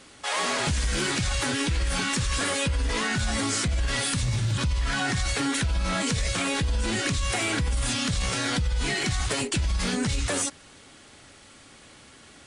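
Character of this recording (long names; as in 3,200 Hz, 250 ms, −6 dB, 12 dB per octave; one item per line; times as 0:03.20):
background noise floor −51 dBFS
spectral slope −3.5 dB per octave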